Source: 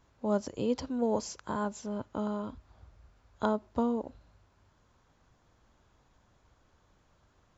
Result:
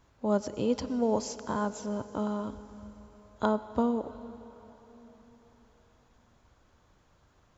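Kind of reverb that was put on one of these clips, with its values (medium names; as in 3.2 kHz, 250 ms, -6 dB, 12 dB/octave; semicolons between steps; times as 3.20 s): plate-style reverb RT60 4.2 s, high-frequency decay 1×, pre-delay 75 ms, DRR 13.5 dB; trim +2 dB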